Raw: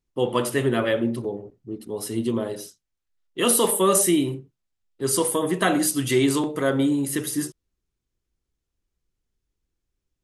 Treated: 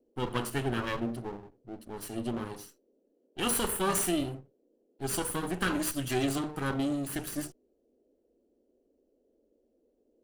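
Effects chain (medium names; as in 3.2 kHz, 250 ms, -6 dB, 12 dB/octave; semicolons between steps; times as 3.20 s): comb filter that takes the minimum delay 0.69 ms; band noise 230–540 Hz -63 dBFS; trim -8 dB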